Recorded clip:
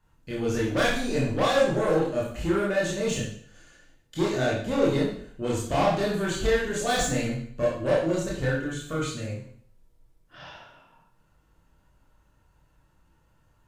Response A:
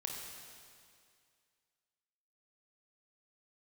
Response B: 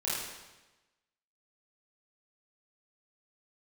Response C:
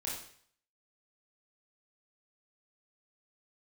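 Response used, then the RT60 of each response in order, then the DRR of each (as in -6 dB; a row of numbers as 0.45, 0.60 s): C; 2.2, 1.1, 0.55 s; -0.5, -9.0, -5.5 dB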